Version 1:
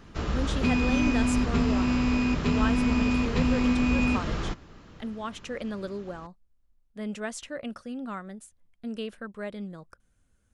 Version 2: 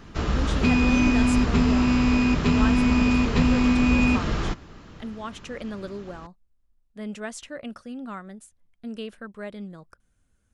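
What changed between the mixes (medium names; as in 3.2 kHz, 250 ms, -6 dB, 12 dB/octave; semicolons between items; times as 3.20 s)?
background +4.5 dB; master: add peaking EQ 520 Hz -2 dB 0.25 oct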